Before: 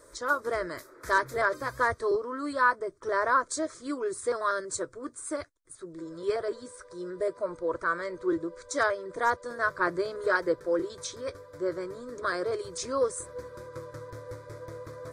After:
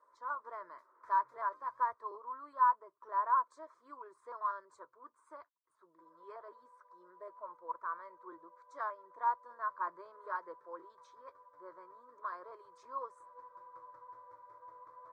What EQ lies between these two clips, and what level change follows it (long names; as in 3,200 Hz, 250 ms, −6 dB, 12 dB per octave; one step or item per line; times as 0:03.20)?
resonant band-pass 1,000 Hz, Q 8.6
0.0 dB